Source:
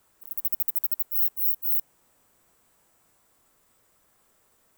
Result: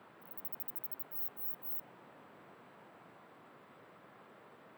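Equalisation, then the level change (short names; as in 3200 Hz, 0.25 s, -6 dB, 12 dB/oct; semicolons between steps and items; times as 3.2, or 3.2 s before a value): HPF 130 Hz 24 dB/oct; air absorption 480 m; +14.5 dB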